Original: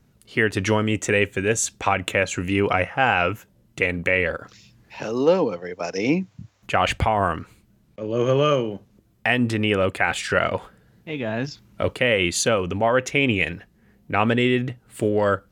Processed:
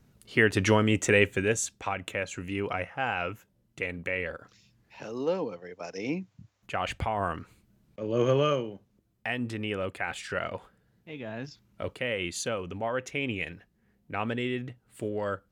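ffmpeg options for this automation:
ffmpeg -i in.wav -af "volume=5.5dB,afade=type=out:start_time=1.28:duration=0.47:silence=0.354813,afade=type=in:start_time=6.93:duration=1.29:silence=0.421697,afade=type=out:start_time=8.22:duration=0.52:silence=0.398107" out.wav

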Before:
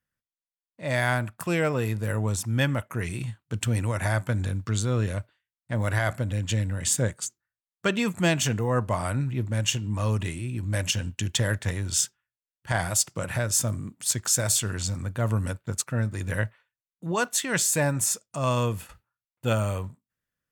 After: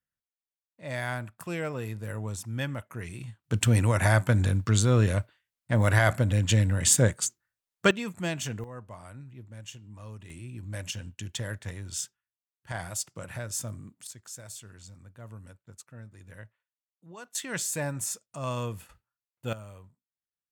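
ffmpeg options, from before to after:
ffmpeg -i in.wav -af "asetnsamples=nb_out_samples=441:pad=0,asendcmd='3.44 volume volume 3.5dB;7.91 volume volume -8.5dB;8.64 volume volume -18dB;10.3 volume volume -9.5dB;14.07 volume volume -19.5dB;17.35 volume volume -7.5dB;19.53 volume volume -18.5dB',volume=-8dB" out.wav

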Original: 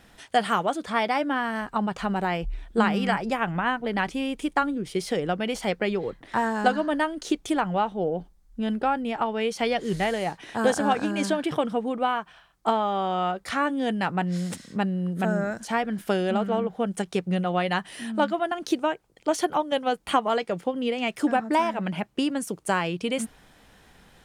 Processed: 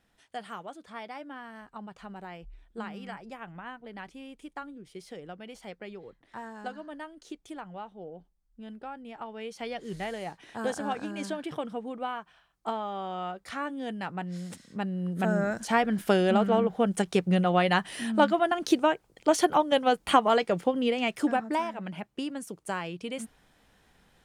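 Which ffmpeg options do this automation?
ffmpeg -i in.wav -af "volume=1.5dB,afade=type=in:start_time=8.91:duration=1.26:silence=0.421697,afade=type=in:start_time=14.67:duration=1.1:silence=0.298538,afade=type=out:start_time=20.66:duration=1.05:silence=0.316228" out.wav

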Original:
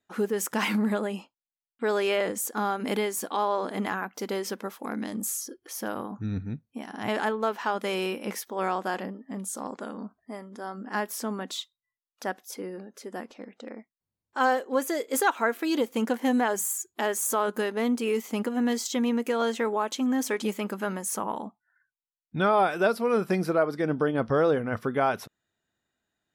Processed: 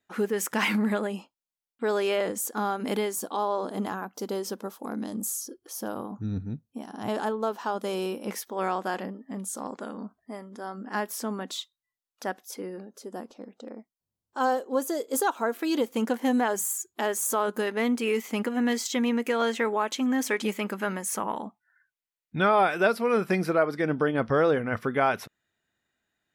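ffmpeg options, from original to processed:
ffmpeg -i in.wav -af "asetnsamples=nb_out_samples=441:pad=0,asendcmd='1.07 equalizer g -3.5;3.15 equalizer g -11;8.28 equalizer g -1.5;12.85 equalizer g -11;15.54 equalizer g -1.5;17.67 equalizer g 5.5',equalizer=frequency=2100:width_type=o:width=1:gain=3.5" out.wav

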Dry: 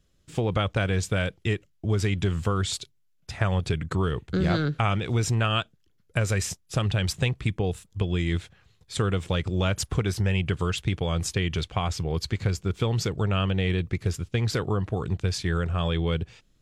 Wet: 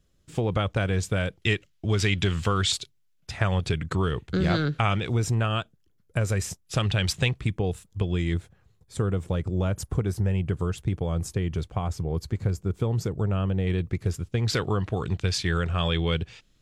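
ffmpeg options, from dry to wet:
ffmpeg -i in.wav -af "asetnsamples=nb_out_samples=441:pad=0,asendcmd='1.42 equalizer g 8;2.72 equalizer g 2;5.09 equalizer g -5.5;6.66 equalizer g 3.5;7.38 equalizer g -3;8.34 equalizer g -13;13.67 equalizer g -5.5;14.48 equalizer g 5',equalizer=frequency=3200:width_type=o:width=2.4:gain=-2.5" out.wav

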